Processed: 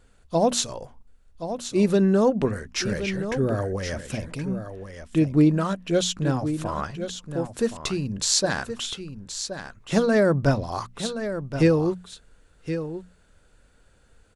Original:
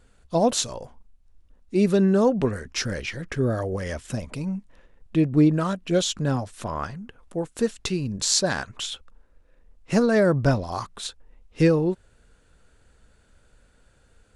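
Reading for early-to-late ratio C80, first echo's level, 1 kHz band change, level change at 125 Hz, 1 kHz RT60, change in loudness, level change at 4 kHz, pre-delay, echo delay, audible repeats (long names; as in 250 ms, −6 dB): no reverb audible, −10.0 dB, +0.5 dB, 0.0 dB, no reverb audible, −0.5 dB, +0.5 dB, no reverb audible, 1,073 ms, 1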